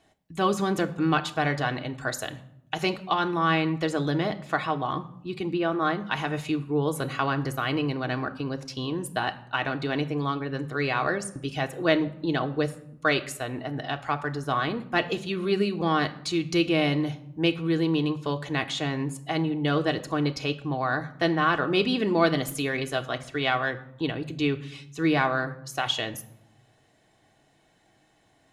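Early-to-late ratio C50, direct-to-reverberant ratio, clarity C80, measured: 16.5 dB, 4.5 dB, 18.5 dB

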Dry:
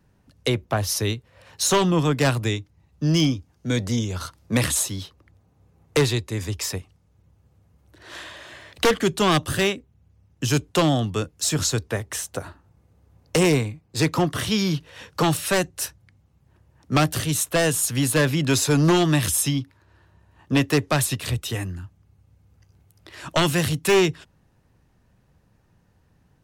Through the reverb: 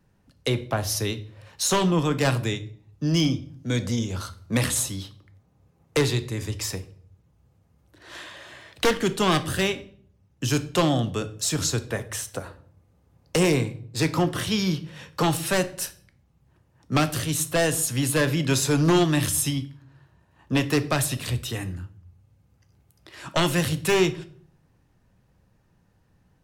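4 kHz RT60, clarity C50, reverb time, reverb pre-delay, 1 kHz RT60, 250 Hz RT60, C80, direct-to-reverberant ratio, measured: 0.40 s, 16.0 dB, 0.55 s, 4 ms, 0.50 s, 0.70 s, 20.0 dB, 10.0 dB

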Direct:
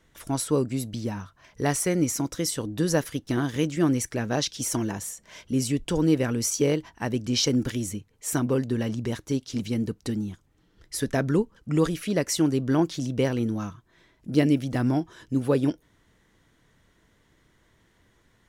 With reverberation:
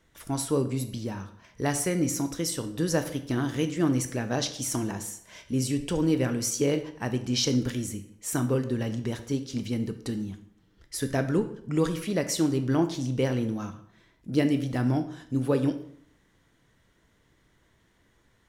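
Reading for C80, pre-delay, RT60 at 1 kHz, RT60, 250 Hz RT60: 15.0 dB, 15 ms, 0.65 s, 0.65 s, 0.70 s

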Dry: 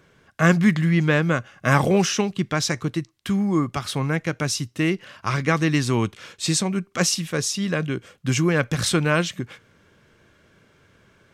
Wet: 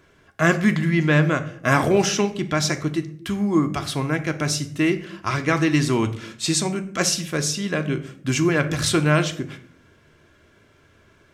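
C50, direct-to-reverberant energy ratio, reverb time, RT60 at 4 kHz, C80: 14.0 dB, 6.0 dB, 0.60 s, 0.35 s, 17.0 dB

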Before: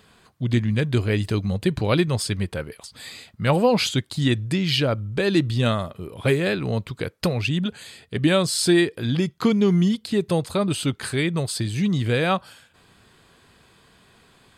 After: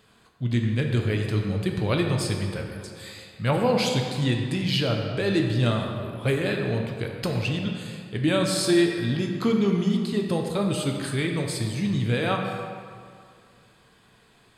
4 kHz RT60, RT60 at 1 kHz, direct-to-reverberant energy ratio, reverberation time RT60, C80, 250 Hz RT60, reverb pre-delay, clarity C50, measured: 1.4 s, 2.2 s, 1.5 dB, 2.2 s, 4.5 dB, 2.2 s, 6 ms, 3.5 dB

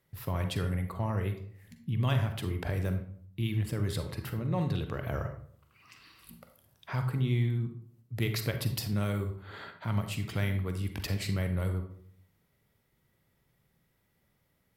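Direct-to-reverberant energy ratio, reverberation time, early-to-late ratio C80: 6.5 dB, 0.55 s, 12.0 dB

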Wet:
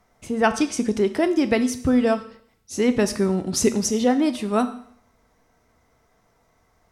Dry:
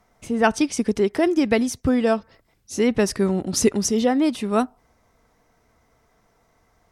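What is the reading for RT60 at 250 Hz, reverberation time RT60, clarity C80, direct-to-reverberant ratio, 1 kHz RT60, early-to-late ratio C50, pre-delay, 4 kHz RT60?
0.60 s, 0.65 s, 16.0 dB, 9.5 dB, 0.60 s, 13.5 dB, 8 ms, 0.65 s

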